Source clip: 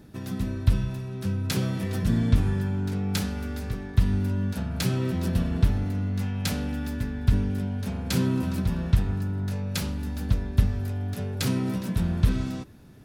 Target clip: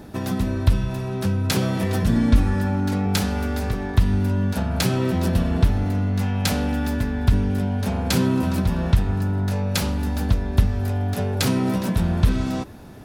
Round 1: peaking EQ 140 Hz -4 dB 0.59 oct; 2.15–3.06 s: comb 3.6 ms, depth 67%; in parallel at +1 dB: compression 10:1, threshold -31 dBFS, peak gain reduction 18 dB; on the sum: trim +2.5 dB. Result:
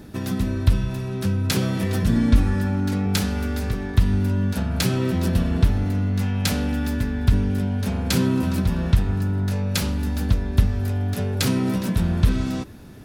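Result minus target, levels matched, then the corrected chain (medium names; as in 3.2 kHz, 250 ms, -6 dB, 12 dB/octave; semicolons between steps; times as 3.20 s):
1 kHz band -3.5 dB
peaking EQ 140 Hz -4 dB 0.59 oct; 2.15–3.06 s: comb 3.6 ms, depth 67%; in parallel at +1 dB: compression 10:1, threshold -31 dBFS, peak gain reduction 18 dB + peaking EQ 770 Hz +10.5 dB 1.5 oct; on the sum: trim +2.5 dB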